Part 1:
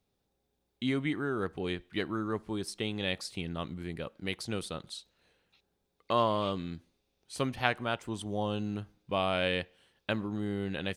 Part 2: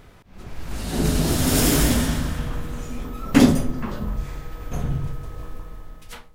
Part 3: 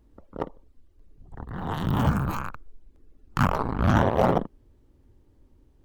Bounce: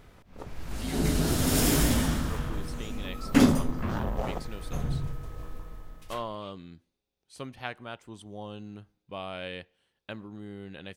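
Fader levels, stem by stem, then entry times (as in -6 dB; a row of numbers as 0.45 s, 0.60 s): -8.0 dB, -5.5 dB, -13.0 dB; 0.00 s, 0.00 s, 0.00 s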